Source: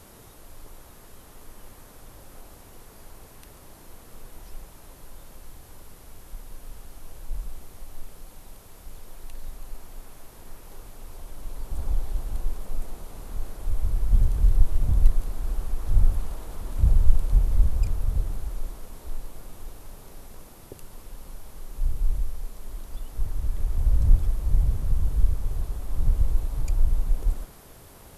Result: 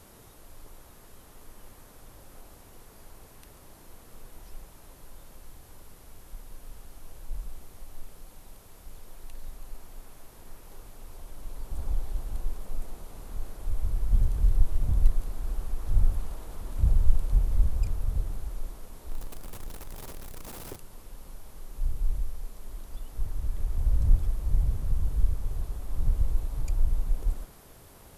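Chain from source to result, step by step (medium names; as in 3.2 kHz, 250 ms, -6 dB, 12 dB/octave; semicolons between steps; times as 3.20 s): 19.11–20.76 s: jump at every zero crossing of -34 dBFS; trim -3.5 dB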